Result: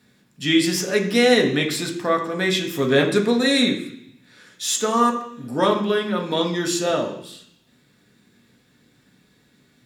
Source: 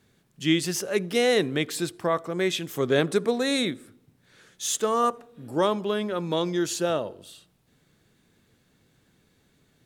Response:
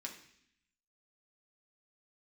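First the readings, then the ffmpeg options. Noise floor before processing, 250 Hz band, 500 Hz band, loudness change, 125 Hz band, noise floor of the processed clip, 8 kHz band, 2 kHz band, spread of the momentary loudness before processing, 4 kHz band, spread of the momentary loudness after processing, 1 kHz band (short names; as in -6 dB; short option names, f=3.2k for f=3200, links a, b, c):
-66 dBFS, +6.5 dB, +4.0 dB, +5.5 dB, +4.5 dB, -60 dBFS, +4.5 dB, +7.5 dB, 7 LU, +7.0 dB, 11 LU, +5.5 dB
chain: -filter_complex "[1:a]atrim=start_sample=2205[a];[0:a][a]afir=irnorm=-1:irlink=0,volume=8.5dB"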